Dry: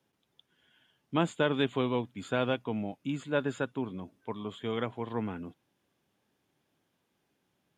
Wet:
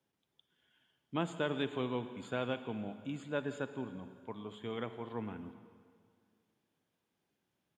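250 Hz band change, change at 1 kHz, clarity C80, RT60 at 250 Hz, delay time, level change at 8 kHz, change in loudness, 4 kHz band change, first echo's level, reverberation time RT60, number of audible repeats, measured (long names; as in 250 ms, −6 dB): −6.5 dB, −6.5 dB, 12.0 dB, 2.2 s, 169 ms, −6.5 dB, −6.5 dB, −6.5 dB, −21.5 dB, 2.1 s, 1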